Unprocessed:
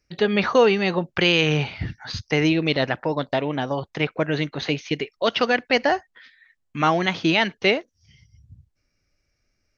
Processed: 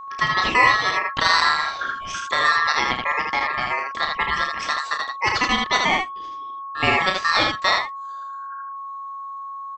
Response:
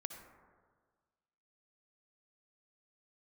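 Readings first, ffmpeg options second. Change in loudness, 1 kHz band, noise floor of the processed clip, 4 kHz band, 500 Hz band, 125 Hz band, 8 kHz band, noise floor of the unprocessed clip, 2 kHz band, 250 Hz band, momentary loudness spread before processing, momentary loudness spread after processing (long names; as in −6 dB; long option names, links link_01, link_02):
+2.0 dB, +7.0 dB, −33 dBFS, +2.5 dB, −9.5 dB, −10.5 dB, can't be measured, −73 dBFS, +5.5 dB, −10.5 dB, 9 LU, 16 LU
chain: -af "aeval=exprs='val(0)*sin(2*PI*1500*n/s)':channel_layout=same,aeval=exprs='val(0)+0.0158*sin(2*PI*1100*n/s)':channel_layout=same,aecho=1:1:32|79:0.447|0.668,volume=1.5dB"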